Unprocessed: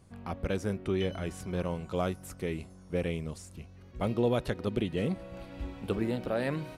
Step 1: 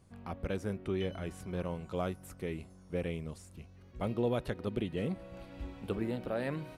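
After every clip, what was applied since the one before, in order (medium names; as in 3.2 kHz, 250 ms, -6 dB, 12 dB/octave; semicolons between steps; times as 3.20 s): dynamic bell 6 kHz, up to -4 dB, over -57 dBFS, Q 0.95; trim -4 dB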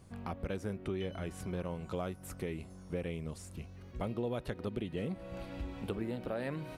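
compression 2.5:1, threshold -43 dBFS, peak gain reduction 11 dB; trim +5.5 dB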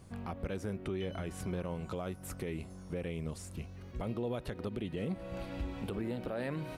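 peak limiter -30 dBFS, peak gain reduction 7.5 dB; trim +2.5 dB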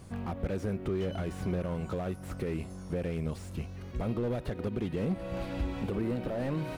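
slew-rate limiter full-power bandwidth 8.8 Hz; trim +5.5 dB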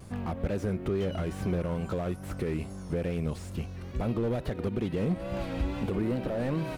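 vibrato 2.3 Hz 66 cents; trim +2.5 dB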